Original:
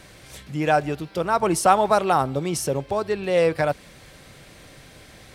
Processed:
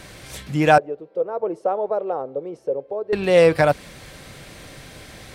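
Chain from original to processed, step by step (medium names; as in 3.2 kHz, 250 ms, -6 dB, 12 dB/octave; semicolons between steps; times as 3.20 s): 0.78–3.13 s: band-pass filter 490 Hz, Q 5; trim +5.5 dB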